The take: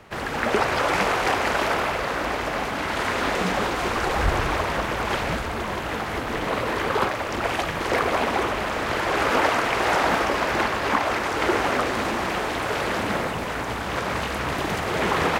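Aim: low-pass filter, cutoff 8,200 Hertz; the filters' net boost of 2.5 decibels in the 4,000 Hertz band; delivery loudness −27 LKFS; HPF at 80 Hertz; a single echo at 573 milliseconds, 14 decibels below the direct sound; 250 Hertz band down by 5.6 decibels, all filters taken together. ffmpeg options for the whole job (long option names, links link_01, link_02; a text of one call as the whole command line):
ffmpeg -i in.wav -af "highpass=80,lowpass=8200,equalizer=frequency=250:width_type=o:gain=-8,equalizer=frequency=4000:width_type=o:gain=3.5,aecho=1:1:573:0.2,volume=-3dB" out.wav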